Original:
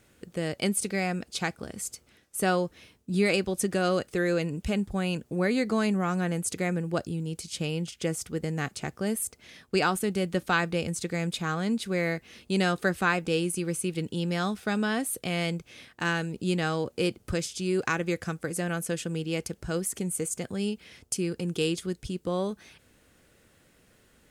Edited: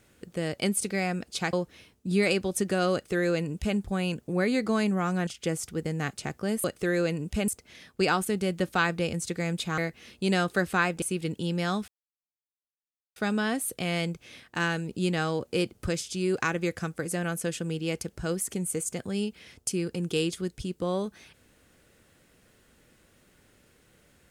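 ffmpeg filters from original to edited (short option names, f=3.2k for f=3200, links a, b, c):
-filter_complex "[0:a]asplit=8[a][b][c][d][e][f][g][h];[a]atrim=end=1.532[i];[b]atrim=start=2.558:end=6.302[j];[c]atrim=start=7.848:end=9.222[k];[d]atrim=start=3.958:end=4.802[l];[e]atrim=start=9.218:end=11.522[m];[f]atrim=start=12.058:end=13.302[n];[g]atrim=start=13.748:end=14.61,asetpts=PTS-STARTPTS,afade=t=out:st=0.858:d=0.004:c=hsin,apad=pad_dur=1.28[o];[h]atrim=start=14.61,asetpts=PTS-STARTPTS,afade=t=in:d=0.004:c=hsin[p];[i][j]acrossfade=d=0.004:c1=hsin:c2=hsin[q];[q][k]acrossfade=d=0.004:c1=hsin:c2=hsin[r];[r][l]acrossfade=d=0.004:c1=hsin:c2=hsin[s];[s][m]acrossfade=d=0.004:c1=hsin:c2=hsin[t];[t][n]acrossfade=d=0.004:c1=hsin:c2=hsin[u];[o][p]concat=n=2:v=0:a=1[v];[u][v]acrossfade=d=0.004:c1=hsin:c2=hsin"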